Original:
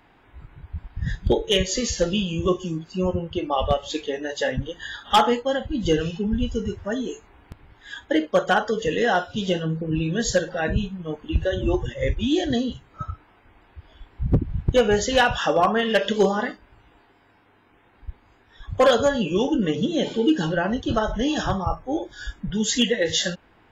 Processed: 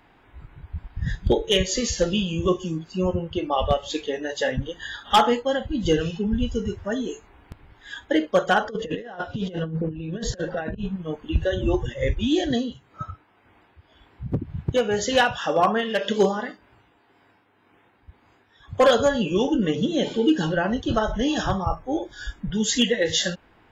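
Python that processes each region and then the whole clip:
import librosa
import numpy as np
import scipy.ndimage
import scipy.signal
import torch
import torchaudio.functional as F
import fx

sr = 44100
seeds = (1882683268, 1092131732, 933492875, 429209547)

y = fx.chain(x, sr, fx.lowpass(hz=1700.0, slope=6),
    fx.over_compress(threshold_db=-28.0, ratio=-0.5), at=(8.64, 10.96))
y = fx.chain(y, sr, fx.highpass(hz=94.0, slope=12),
    fx.tremolo(hz=1.9, depth=0.43), at=(12.5, 18.81))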